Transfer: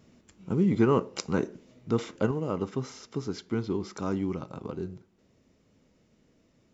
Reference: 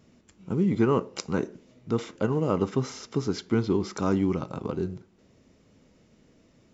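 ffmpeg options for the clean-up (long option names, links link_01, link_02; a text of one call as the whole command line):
ffmpeg -i in.wav -af "asetnsamples=nb_out_samples=441:pad=0,asendcmd='2.31 volume volume 5.5dB',volume=0dB" out.wav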